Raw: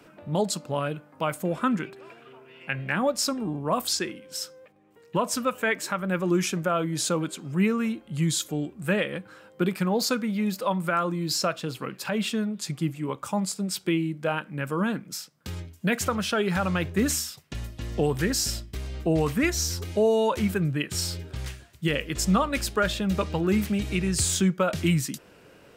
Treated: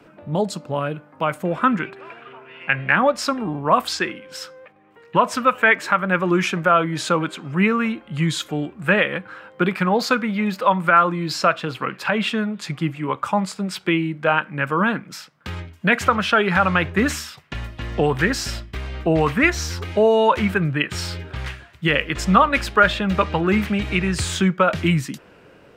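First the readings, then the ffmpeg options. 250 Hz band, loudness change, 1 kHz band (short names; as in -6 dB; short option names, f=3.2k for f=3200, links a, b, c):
+4.0 dB, +6.5 dB, +11.0 dB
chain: -filter_complex "[0:a]highshelf=f=4.4k:g=-11.5,acrossover=split=820|3400[a][b][c];[b]dynaudnorm=f=600:g=5:m=10dB[d];[a][d][c]amix=inputs=3:normalize=0,volume=4dB"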